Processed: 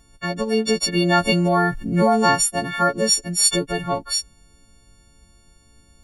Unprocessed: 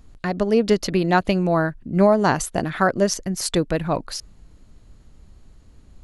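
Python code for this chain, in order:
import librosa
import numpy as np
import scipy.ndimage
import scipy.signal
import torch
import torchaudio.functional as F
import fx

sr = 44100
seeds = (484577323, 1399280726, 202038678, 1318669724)

y = fx.freq_snap(x, sr, grid_st=4)
y = fx.env_flatten(y, sr, amount_pct=50, at=(0.96, 2.34), fade=0.02)
y = F.gain(torch.from_numpy(y), -2.5).numpy()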